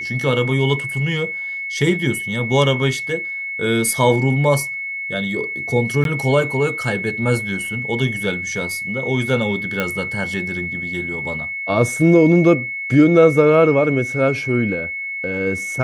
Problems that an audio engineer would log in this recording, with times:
whistle 2,200 Hz −24 dBFS
0:06.04–0:06.05: drop-out 12 ms
0:09.80: click −7 dBFS

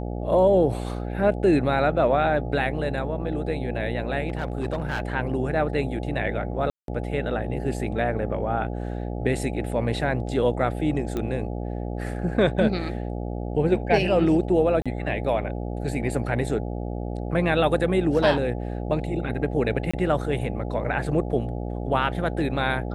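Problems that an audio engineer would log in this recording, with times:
mains buzz 60 Hz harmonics 14 −30 dBFS
0:04.28–0:05.13: clipping −21.5 dBFS
0:06.70–0:06.88: drop-out 182 ms
0:11.17: click −16 dBFS
0:14.82–0:14.86: drop-out 36 ms
0:19.91–0:19.93: drop-out 25 ms

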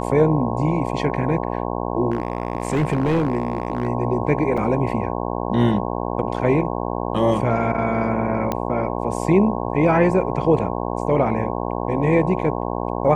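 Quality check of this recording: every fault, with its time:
mains buzz 60 Hz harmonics 18 −25 dBFS
0:02.10–0:03.88: clipping −15 dBFS
0:04.57–0:04.58: drop-out 5.3 ms
0:08.52: click −9 dBFS

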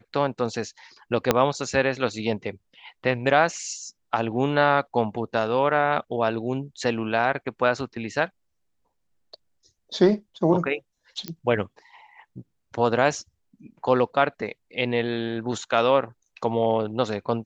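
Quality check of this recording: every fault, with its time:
0:01.31: click −3 dBFS
0:11.28: click −15 dBFS

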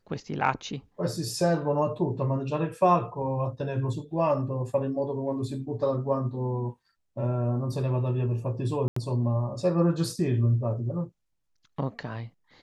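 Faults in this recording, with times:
0:08.88–0:08.96: drop-out 84 ms

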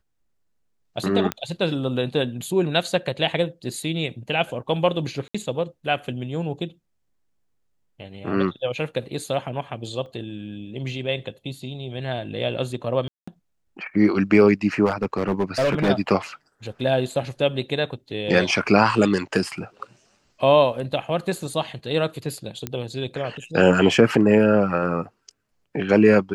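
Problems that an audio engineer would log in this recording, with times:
0:01.32: click −9 dBFS
0:05.28–0:05.34: drop-out 65 ms
0:10.06: drop-out 2.5 ms
0:13.08–0:13.28: drop-out 195 ms
0:14.85–0:15.90: clipping −16.5 dBFS
0:22.67: click −11 dBFS

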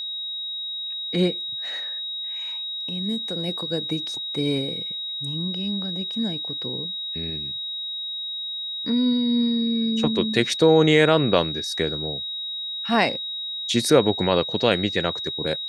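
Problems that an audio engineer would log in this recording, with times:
whistle 3,800 Hz −28 dBFS

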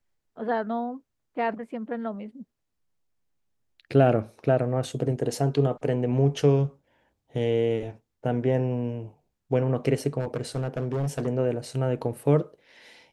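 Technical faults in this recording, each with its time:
0:10.19–0:11.28: clipping −23.5 dBFS

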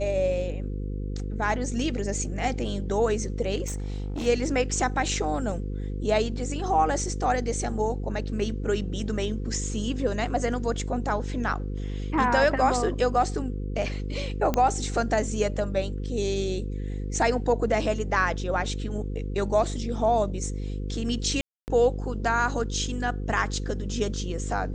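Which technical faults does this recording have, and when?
mains buzz 50 Hz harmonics 10 −31 dBFS
0:03.66–0:04.27: clipping −27 dBFS
0:14.54: click −11 dBFS
0:21.41–0:21.68: drop-out 269 ms

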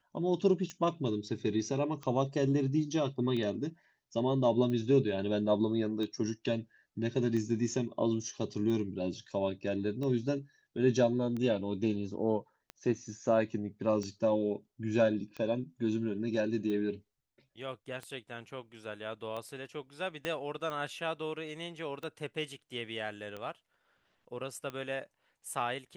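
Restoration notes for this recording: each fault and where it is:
scratch tick 45 rpm −27 dBFS
0:20.25: click −20 dBFS

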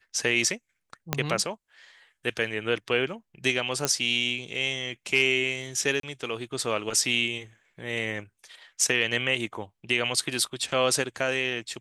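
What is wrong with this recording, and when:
0:01.13: click −7 dBFS
0:03.85: click −8 dBFS
0:06.00–0:06.03: drop-out 33 ms

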